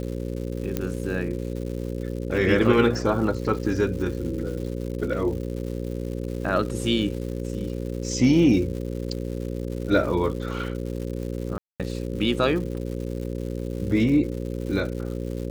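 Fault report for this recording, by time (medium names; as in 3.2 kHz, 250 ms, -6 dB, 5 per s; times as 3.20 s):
buzz 60 Hz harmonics 9 -30 dBFS
crackle 250 per s -34 dBFS
0.77 s: pop -11 dBFS
11.58–11.80 s: dropout 217 ms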